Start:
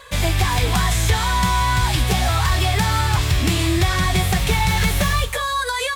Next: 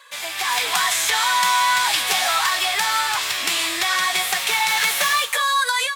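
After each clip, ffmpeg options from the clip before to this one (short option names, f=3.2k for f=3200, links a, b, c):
-af "highpass=940,dynaudnorm=f=290:g=3:m=11dB,volume=-4dB"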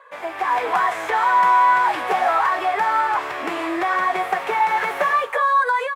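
-af "firequalizer=gain_entry='entry(120,0);entry(330,13);entry(3700,-18);entry(7600,-21)':delay=0.05:min_phase=1,volume=-2dB"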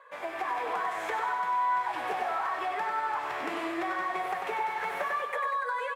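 -af "acompressor=threshold=-25dB:ratio=3,aecho=1:1:96|192|288|384|480|576|672:0.501|0.266|0.141|0.0746|0.0395|0.021|0.0111,volume=-6.5dB"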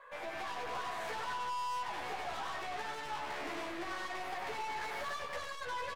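-filter_complex "[0:a]aeval=exprs='(tanh(79.4*val(0)+0.3)-tanh(0.3))/79.4':c=same,asplit=2[a][b];[b]adelay=14,volume=-3dB[c];[a][c]amix=inputs=2:normalize=0,volume=-1.5dB"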